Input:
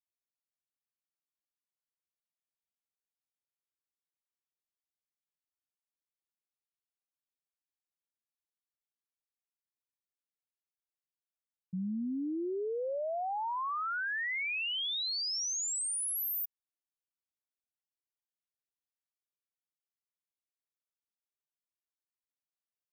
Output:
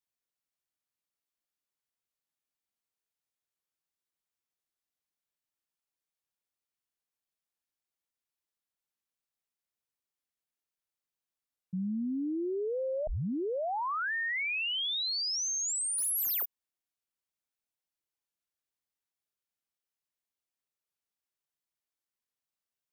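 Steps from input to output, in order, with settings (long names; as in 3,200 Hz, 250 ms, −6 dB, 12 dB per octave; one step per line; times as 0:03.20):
0:13.07: tape start 1.05 s
0:15.98–0:16.43: leveller curve on the samples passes 3
wow of a warped record 45 rpm, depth 100 cents
level +2 dB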